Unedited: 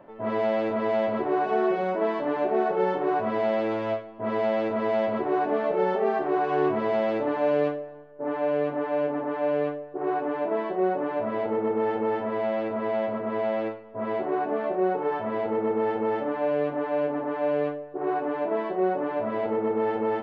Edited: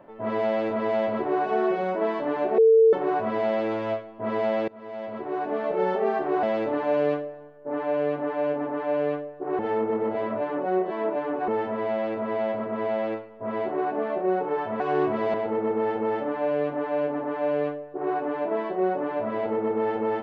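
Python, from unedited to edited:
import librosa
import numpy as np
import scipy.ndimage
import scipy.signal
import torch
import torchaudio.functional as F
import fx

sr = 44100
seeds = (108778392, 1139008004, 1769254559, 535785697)

y = fx.edit(x, sr, fx.bleep(start_s=2.58, length_s=0.35, hz=448.0, db=-12.5),
    fx.fade_in_from(start_s=4.68, length_s=1.19, floor_db=-24.0),
    fx.move(start_s=6.43, length_s=0.54, to_s=15.34),
    fx.reverse_span(start_s=10.13, length_s=1.89), tone=tone)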